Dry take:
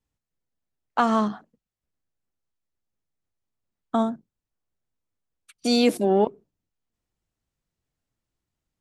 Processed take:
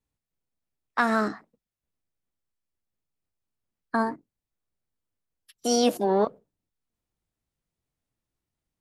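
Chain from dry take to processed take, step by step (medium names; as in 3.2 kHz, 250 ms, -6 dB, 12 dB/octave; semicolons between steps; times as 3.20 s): formant shift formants +4 st; trim -2.5 dB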